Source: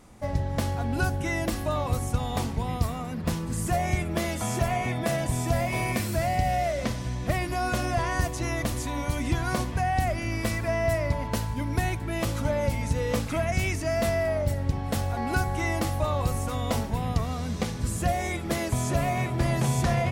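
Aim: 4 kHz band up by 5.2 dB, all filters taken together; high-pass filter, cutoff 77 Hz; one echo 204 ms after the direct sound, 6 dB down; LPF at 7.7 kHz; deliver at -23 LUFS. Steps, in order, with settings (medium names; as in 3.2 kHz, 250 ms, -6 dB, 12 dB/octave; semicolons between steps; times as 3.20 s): high-pass 77 Hz; low-pass 7.7 kHz; peaking EQ 4 kHz +7 dB; delay 204 ms -6 dB; trim +4 dB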